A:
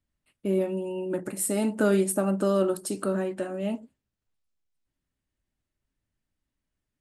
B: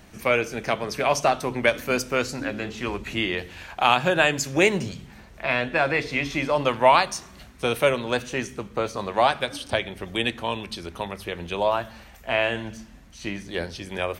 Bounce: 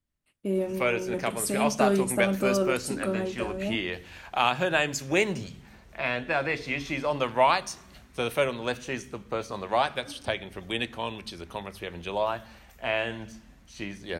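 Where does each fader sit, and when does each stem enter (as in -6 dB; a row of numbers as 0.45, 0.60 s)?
-2.0, -5.0 dB; 0.00, 0.55 s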